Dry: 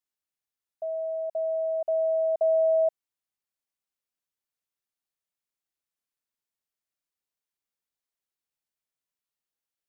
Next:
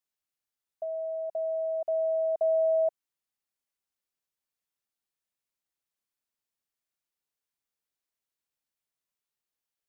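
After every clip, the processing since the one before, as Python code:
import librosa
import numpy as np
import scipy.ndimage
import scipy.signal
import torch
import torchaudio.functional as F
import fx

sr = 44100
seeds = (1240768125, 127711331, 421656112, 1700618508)

y = fx.dynamic_eq(x, sr, hz=590.0, q=2.4, threshold_db=-34.0, ratio=4.0, max_db=-3)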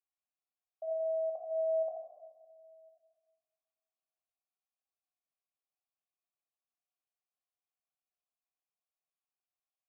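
y = fx.gate_flip(x, sr, shuts_db=-27.0, range_db=-34)
y = fx.vowel_filter(y, sr, vowel='a')
y = fx.room_shoebox(y, sr, seeds[0], volume_m3=1200.0, walls='mixed', distance_m=2.3)
y = y * 10.0 ** (-1.0 / 20.0)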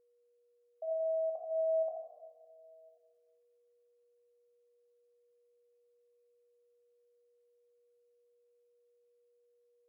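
y = x + 10.0 ** (-69.0 / 20.0) * np.sin(2.0 * np.pi * 480.0 * np.arange(len(x)) / sr)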